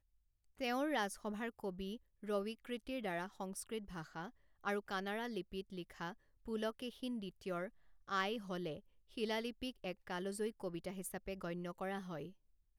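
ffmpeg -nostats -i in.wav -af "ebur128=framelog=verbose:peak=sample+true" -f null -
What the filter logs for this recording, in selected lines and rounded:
Integrated loudness:
  I:         -43.1 LUFS
  Threshold: -53.2 LUFS
Loudness range:
  LRA:         2.6 LU
  Threshold: -63.5 LUFS
  LRA low:   -44.7 LUFS
  LRA high:  -42.1 LUFS
Sample peak:
  Peak:      -24.0 dBFS
True peak:
  Peak:      -24.0 dBFS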